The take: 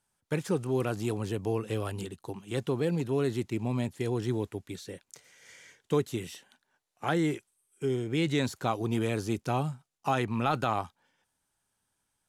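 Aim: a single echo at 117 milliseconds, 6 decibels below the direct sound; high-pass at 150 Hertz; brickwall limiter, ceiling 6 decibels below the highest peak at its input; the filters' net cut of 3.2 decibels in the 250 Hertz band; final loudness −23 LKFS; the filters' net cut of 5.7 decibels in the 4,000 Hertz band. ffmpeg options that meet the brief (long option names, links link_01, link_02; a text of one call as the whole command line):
ffmpeg -i in.wav -af "highpass=150,equalizer=frequency=250:width_type=o:gain=-3.5,equalizer=frequency=4000:width_type=o:gain=-7.5,alimiter=limit=-21.5dB:level=0:latency=1,aecho=1:1:117:0.501,volume=11dB" out.wav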